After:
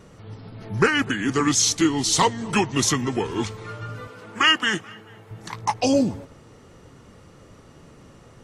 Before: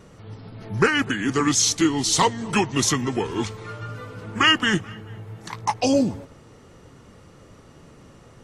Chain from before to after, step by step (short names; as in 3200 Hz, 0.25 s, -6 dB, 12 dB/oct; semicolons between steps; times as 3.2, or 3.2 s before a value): 4.07–5.31 HPF 440 Hz 6 dB/oct